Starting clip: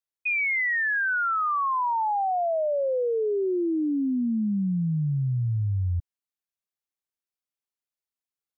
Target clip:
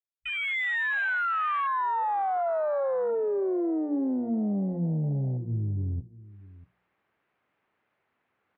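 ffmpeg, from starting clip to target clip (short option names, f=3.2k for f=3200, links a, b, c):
-filter_complex "[0:a]aeval=exprs='(tanh(28.2*val(0)+0.55)-tanh(0.55))/28.2':c=same,lowpass=f=2.2k:w=0.5412,lowpass=f=2.2k:w=1.3066,bandreject=f=60:t=h:w=6,bandreject=f=120:t=h:w=6,bandreject=f=180:t=h:w=6,bandreject=f=240:t=h:w=6,bandreject=f=300:t=h:w=6,asplit=2[a][b];[b]alimiter=level_in=11dB:limit=-24dB:level=0:latency=1:release=82,volume=-11dB,volume=2.5dB[c];[a][c]amix=inputs=2:normalize=0,afwtdn=0.0316,areverse,acompressor=mode=upward:threshold=-49dB:ratio=2.5,areverse,highpass=88,asplit=2[d][e];[e]adelay=641.4,volume=-19dB,highshelf=f=4k:g=-14.4[f];[d][f]amix=inputs=2:normalize=0,volume=1dB"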